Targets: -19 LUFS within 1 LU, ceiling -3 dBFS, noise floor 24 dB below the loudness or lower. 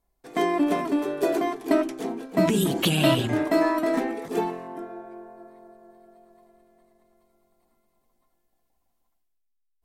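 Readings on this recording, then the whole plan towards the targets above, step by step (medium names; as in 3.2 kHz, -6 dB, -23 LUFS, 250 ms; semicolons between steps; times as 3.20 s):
loudness -24.5 LUFS; peak level -7.0 dBFS; loudness target -19.0 LUFS
-> trim +5.5 dB; peak limiter -3 dBFS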